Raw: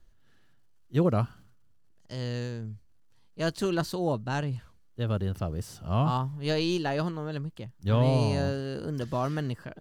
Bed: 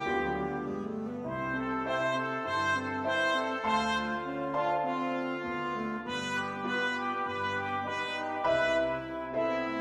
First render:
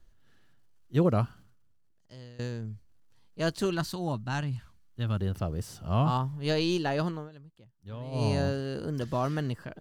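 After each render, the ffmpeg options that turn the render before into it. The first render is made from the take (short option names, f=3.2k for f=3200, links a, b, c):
-filter_complex "[0:a]asettb=1/sr,asplit=3[a][b][c];[a]atrim=end=3.704[d];[b]atrim=start=3.7:end=5.2,asetpts=PTS-STARTPTS,afade=t=in:d=0.004:c=qsin,afade=t=out:st=1.496:d=0.004:c=qsin,equalizer=f=470:w=1.6:g=-10.5[e];[c]atrim=start=5.196[f];[d][e]acrossfade=d=0.004:c1=hsin:c2=qsin[g];[g][f]acrossfade=d=0.004:c1=qsin:c2=hsin,asplit=4[h][i][j][k];[h]atrim=end=2.39,asetpts=PTS-STARTPTS,afade=t=out:st=1.17:d=1.22:silence=0.1[l];[i]atrim=start=2.39:end=7.3,asetpts=PTS-STARTPTS,afade=t=in:d=0.004:c=hsin:silence=0.1,afade=t=out:st=4.75:d=0.16:silence=0.149624[m];[j]atrim=start=7.3:end=8.11,asetpts=PTS-STARTPTS,volume=-16.5dB[n];[k]atrim=start=8.11,asetpts=PTS-STARTPTS,afade=t=in:d=0.16:silence=0.149624[o];[l][m][n][o]concat=n=4:v=0:a=1"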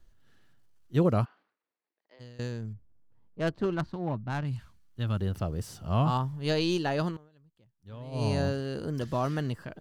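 -filter_complex "[0:a]asplit=3[a][b][c];[a]afade=t=out:st=1.24:d=0.02[d];[b]highpass=f=370:w=0.5412,highpass=f=370:w=1.3066,equalizer=f=390:t=q:w=4:g=-4,equalizer=f=590:t=q:w=4:g=-3,equalizer=f=1.4k:t=q:w=4:g=-6,equalizer=f=2.1k:t=q:w=4:g=3,equalizer=f=3.1k:t=q:w=4:g=-8,lowpass=f=3.5k:w=0.5412,lowpass=f=3.5k:w=1.3066,afade=t=in:st=1.24:d=0.02,afade=t=out:st=2.19:d=0.02[e];[c]afade=t=in:st=2.19:d=0.02[f];[d][e][f]amix=inputs=3:normalize=0,asettb=1/sr,asplit=3[g][h][i];[g]atrim=end=2.734[j];[h]atrim=start=2.73:end=4.45,asetpts=PTS-STARTPTS,afade=t=in:d=0.004:c=qsin,afade=t=out:st=1.716:d=0.004:c=qsin,adynamicsmooth=sensitivity=2:basefreq=1.1k[k];[i]atrim=start=4.446[l];[j][k]acrossfade=d=0.004:c1=hsin:c2=qsin[m];[m][l]acrossfade=d=0.004:c1=qsin:c2=hsin,asplit=2[n][o];[n]atrim=end=7.17,asetpts=PTS-STARTPTS,afade=t=out:st=7.166:d=0.004:c=hsin:silence=0.11885[p];[o]atrim=start=7.17,asetpts=PTS-STARTPTS,afade=t=in:d=1.25:silence=0.11885[q];[p][q]concat=n=2:v=0:a=1"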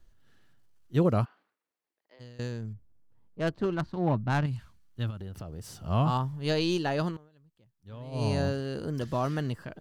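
-filter_complex "[0:a]asplit=3[a][b][c];[a]afade=t=out:st=5.09:d=0.02[d];[b]acompressor=threshold=-36dB:ratio=8:attack=3.2:release=140:knee=1:detection=peak,afade=t=in:st=5.09:d=0.02,afade=t=out:st=5.82:d=0.02[e];[c]afade=t=in:st=5.82:d=0.02[f];[d][e][f]amix=inputs=3:normalize=0,asplit=3[g][h][i];[g]atrim=end=3.972[j];[h]atrim=start=3.968:end=4.462,asetpts=PTS-STARTPTS,volume=5.5dB[k];[i]atrim=start=4.458[l];[j][k]acrossfade=d=0.004:c1=hsin:c2=hsin[m];[m][l]acrossfade=d=0.004:c1=hsin:c2=hsin"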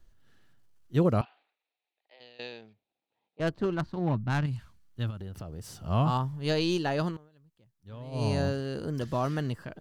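-filter_complex "[0:a]asettb=1/sr,asplit=3[a][b][c];[a]atrim=end=1.214[d];[b]atrim=start=1.21:end=3.4,asetpts=PTS-STARTPTS,afade=t=in:d=0.004:c=qsin,afade=t=out:st=2.186:d=0.004:c=qsin,highpass=480,equalizer=f=760:t=q:w=4:g=8,equalizer=f=1.1k:t=q:w=4:g=-7,equalizer=f=1.5k:t=q:w=4:g=-5,equalizer=f=2.5k:t=q:w=4:g=10,equalizer=f=3.8k:t=q:w=4:g=10,lowpass=f=4.4k:w=0.5412,lowpass=f=4.4k:w=1.3066[e];[c]atrim=start=3.396[f];[d][e]acrossfade=d=0.004:c1=hsin:c2=qsin[g];[g][f]acrossfade=d=0.004:c1=qsin:c2=hsin,asettb=1/sr,asplit=3[h][i][j];[h]atrim=end=3.994[k];[i]atrim=start=3.99:end=4.48,asetpts=PTS-STARTPTS,afade=t=in:d=0.004:c=qsin,afade=t=out:st=0.486:d=0.004:c=qsin,equalizer=f=620:t=o:w=1.6:g=-5[l];[j]atrim=start=4.476[m];[k][l]acrossfade=d=0.004:c1=hsin:c2=qsin[n];[n][m]acrossfade=d=0.004:c1=qsin:c2=hsin"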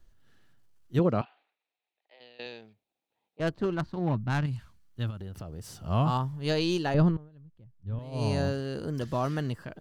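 -filter_complex "[0:a]asettb=1/sr,asplit=3[a][b][c];[a]atrim=end=0.994[d];[b]atrim=start=0.99:end=2.46,asetpts=PTS-STARTPTS,afade=t=in:d=0.004:c=qsin,afade=t=out:st=1.466:d=0.004:c=qsin,highpass=130,lowpass=4.6k[e];[c]atrim=start=2.456[f];[d][e]acrossfade=d=0.004:c1=hsin:c2=qsin[g];[g][f]acrossfade=d=0.004:c1=qsin:c2=hsin,asettb=1/sr,asplit=3[h][i][j];[h]atrim=end=6.944[k];[i]atrim=start=6.94:end=7.99,asetpts=PTS-STARTPTS,afade=t=in:d=0.004:c=qsin,afade=t=out:st=1.046:d=0.004:c=qsin,aemphasis=mode=reproduction:type=riaa[l];[j]atrim=start=7.986[m];[k][l]acrossfade=d=0.004:c1=hsin:c2=qsin[n];[n][m]acrossfade=d=0.004:c1=qsin:c2=hsin"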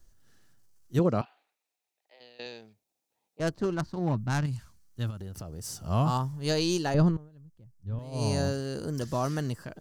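-af "highshelf=f=4.4k:t=q:w=1.5:g=7.5"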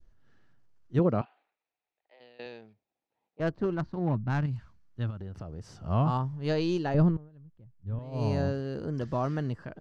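-af "adynamicequalizer=threshold=0.00891:dfrequency=1300:dqfactor=0.73:tfrequency=1300:tqfactor=0.73:attack=5:release=100:ratio=0.375:range=2:mode=cutabove:tftype=bell,lowpass=2.5k"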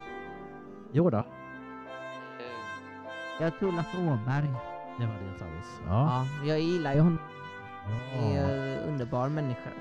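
-filter_complex "[1:a]volume=-11dB[a];[0:a][a]amix=inputs=2:normalize=0"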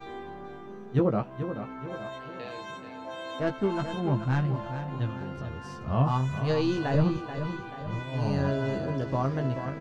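-filter_complex "[0:a]asplit=2[a][b];[b]adelay=15,volume=-5dB[c];[a][c]amix=inputs=2:normalize=0,aecho=1:1:433|866|1299|1732|2165:0.335|0.154|0.0709|0.0326|0.015"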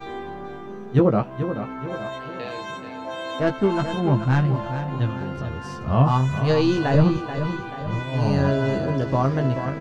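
-af "volume=7dB"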